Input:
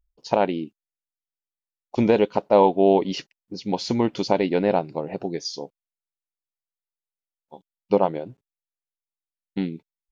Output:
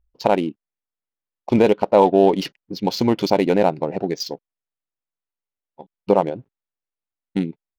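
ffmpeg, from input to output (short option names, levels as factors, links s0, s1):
-filter_complex "[0:a]asplit=2[s0][s1];[s1]alimiter=limit=0.282:level=0:latency=1:release=60,volume=0.75[s2];[s0][s2]amix=inputs=2:normalize=0,atempo=1.3,adynamicsmooth=sensitivity=5.5:basefreq=2500"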